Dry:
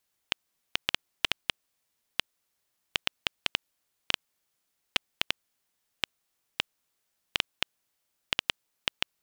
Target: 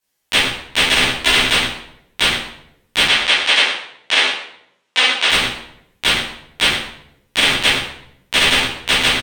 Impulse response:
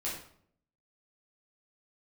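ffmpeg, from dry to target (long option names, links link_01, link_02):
-filter_complex "[0:a]acontrast=28,aeval=exprs='0.794*(cos(1*acos(clip(val(0)/0.794,-1,1)))-cos(1*PI/2))+0.158*(cos(3*acos(clip(val(0)/0.794,-1,1)))-cos(3*PI/2))+0.0631*(cos(7*acos(clip(val(0)/0.794,-1,1)))-cos(7*PI/2))':channel_layout=same,asettb=1/sr,asplit=3[link_01][link_02][link_03];[link_01]atrim=end=3.014[link_04];[link_02]atrim=start=3.01:end=5.22,asetpts=PTS-STARTPTS,afade=type=in:duration=0.004:curve=qsin,afade=type=out:start_time=2.206:duration=0.004:curve=qsin,highpass=470,lowpass=6600[link_05];[link_03]atrim=start=5.216[link_06];[link_04][link_05]acrossfade=duration=0.004:curve1=hsin:curve2=qsin[link_07];[link_07][link_06]acrossfade=duration=0.004:curve1=qsin:curve2=hsin,aecho=1:1:122:0.178[link_08];[1:a]atrim=start_sample=2205,asetrate=34398,aresample=44100[link_09];[link_08][link_09]afir=irnorm=-1:irlink=0,alimiter=level_in=16.5dB:limit=-1dB:release=50:level=0:latency=1,asplit=2[link_10][link_11];[link_11]adelay=11.7,afreqshift=-0.26[link_12];[link_10][link_12]amix=inputs=2:normalize=1,volume=2dB"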